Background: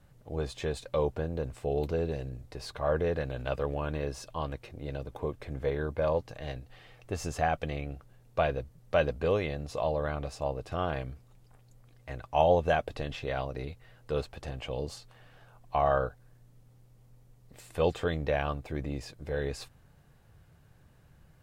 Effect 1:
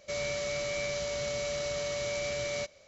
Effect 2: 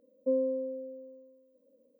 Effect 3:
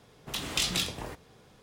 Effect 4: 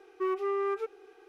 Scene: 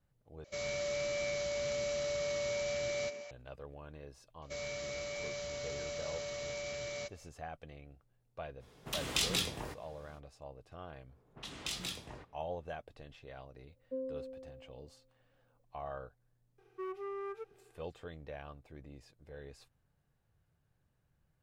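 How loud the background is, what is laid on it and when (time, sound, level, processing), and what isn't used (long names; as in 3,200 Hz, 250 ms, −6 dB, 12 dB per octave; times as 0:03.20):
background −17 dB
0:00.44: overwrite with 1 −5 dB + echo through a band-pass that steps 132 ms, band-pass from 310 Hz, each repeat 1.4 octaves, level −3 dB
0:04.42: mix in 1 −7.5 dB
0:08.59: mix in 3 −3.5 dB, fades 0.05 s
0:11.09: mix in 3 −11 dB + low-pass that shuts in the quiet parts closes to 1,000 Hz, open at −29.5 dBFS
0:13.65: mix in 2 −11.5 dB
0:16.58: mix in 4 −11 dB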